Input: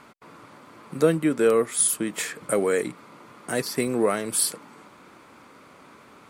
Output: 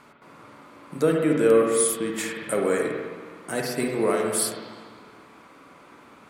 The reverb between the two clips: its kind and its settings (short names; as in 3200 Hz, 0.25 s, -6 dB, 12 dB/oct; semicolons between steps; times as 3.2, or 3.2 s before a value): spring tank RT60 1.6 s, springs 46/53 ms, chirp 60 ms, DRR 0 dB; gain -2.5 dB